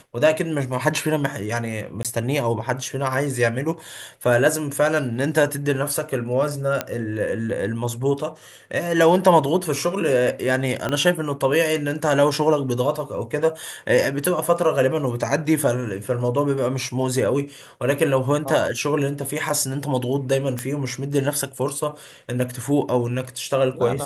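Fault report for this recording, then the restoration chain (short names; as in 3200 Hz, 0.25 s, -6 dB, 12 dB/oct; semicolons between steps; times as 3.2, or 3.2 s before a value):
2.03–2.05 gap 17 ms
6.81 pop -7 dBFS
10.89 pop -11 dBFS
20.59 pop -11 dBFS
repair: de-click; interpolate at 2.03, 17 ms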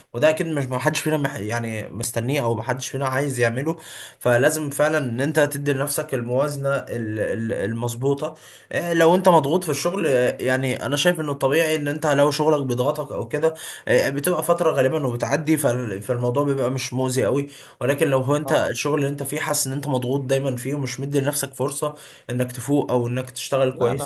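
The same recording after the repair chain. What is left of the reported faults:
10.89 pop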